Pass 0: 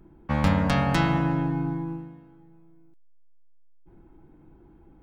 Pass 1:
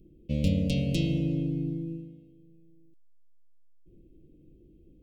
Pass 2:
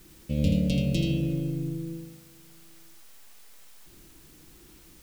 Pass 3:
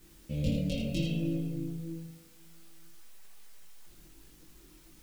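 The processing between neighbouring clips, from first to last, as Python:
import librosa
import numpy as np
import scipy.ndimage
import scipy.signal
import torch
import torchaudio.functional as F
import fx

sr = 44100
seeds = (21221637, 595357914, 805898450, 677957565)

y1 = scipy.signal.sosfilt(scipy.signal.ellip(3, 1.0, 40, [530.0, 2700.0], 'bandstop', fs=sr, output='sos'), x)
y1 = y1 * librosa.db_to_amplitude(-2.5)
y2 = fx.dmg_noise_colour(y1, sr, seeds[0], colour='white', level_db=-57.0)
y2 = y2 + 10.0 ** (-6.5 / 20.0) * np.pad(y2, (int(81 * sr / 1000.0), 0))[:len(y2)]
y3 = fx.chorus_voices(y2, sr, voices=6, hz=0.64, base_ms=22, depth_ms=3.8, mix_pct=50)
y3 = y3 * librosa.db_to_amplitude(-1.5)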